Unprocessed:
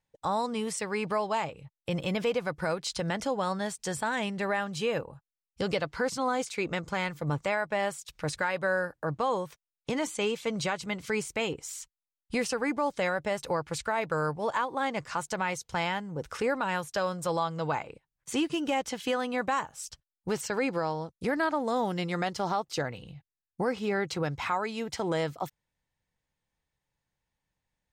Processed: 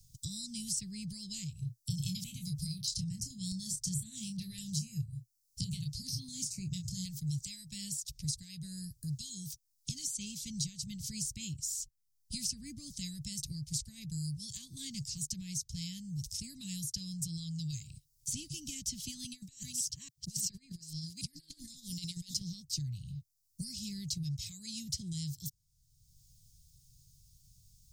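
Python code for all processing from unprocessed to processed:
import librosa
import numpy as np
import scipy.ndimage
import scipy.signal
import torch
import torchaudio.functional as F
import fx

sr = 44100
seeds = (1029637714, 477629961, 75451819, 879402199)

y = fx.chain(x, sr, fx.peak_eq(hz=120.0, db=12.5, octaves=0.73),
    fx.doubler(ms=27.0, db=-7.5),
    fx.filter_held_notch(hz=4.7, low_hz=540.0, high_hz=7400.0), at=(1.6, 7.05))
y = fx.chain(y, sr, fx.reverse_delay(ms=282, wet_db=-9),
    fx.highpass(hz=460.0, slope=6),
    fx.over_compress(threshold_db=-37.0, ratio=-0.5), at=(19.24, 22.41))
y = scipy.signal.sosfilt(scipy.signal.ellip(3, 1.0, 60, [130.0, 5100.0], 'bandstop', fs=sr, output='sos'), y)
y = fx.band_squash(y, sr, depth_pct=70)
y = F.gain(torch.from_numpy(y), 5.5).numpy()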